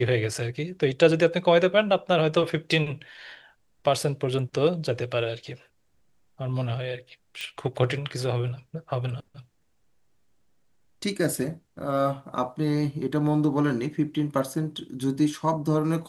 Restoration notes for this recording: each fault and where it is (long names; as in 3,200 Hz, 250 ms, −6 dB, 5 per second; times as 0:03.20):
0:07.41: click −21 dBFS